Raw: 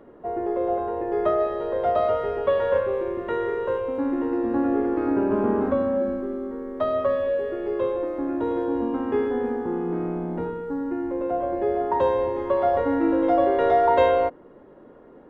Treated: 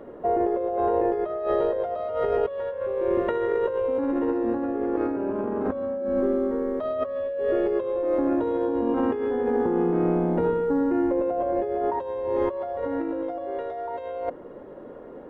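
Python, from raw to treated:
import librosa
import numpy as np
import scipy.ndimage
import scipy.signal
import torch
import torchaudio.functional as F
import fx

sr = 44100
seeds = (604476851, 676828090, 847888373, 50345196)

y = fx.peak_eq(x, sr, hz=540.0, db=5.0, octaves=0.68)
y = fx.over_compress(y, sr, threshold_db=-26.0, ratio=-1.0)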